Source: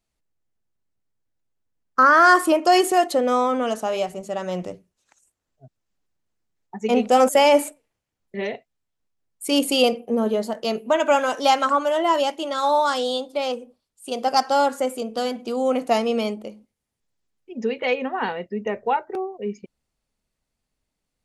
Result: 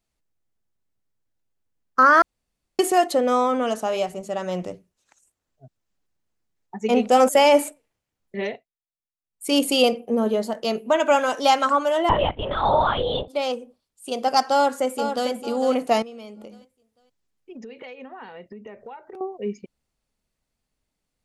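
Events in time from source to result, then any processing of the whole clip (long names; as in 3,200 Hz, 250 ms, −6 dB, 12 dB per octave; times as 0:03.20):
0:02.22–0:02.79: fill with room tone
0:08.47–0:09.49: duck −22 dB, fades 0.30 s quadratic
0:12.09–0:13.28: linear-prediction vocoder at 8 kHz whisper
0:14.53–0:15.29: delay throw 450 ms, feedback 30%, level −8 dB
0:16.02–0:19.21: downward compressor 10 to 1, threshold −36 dBFS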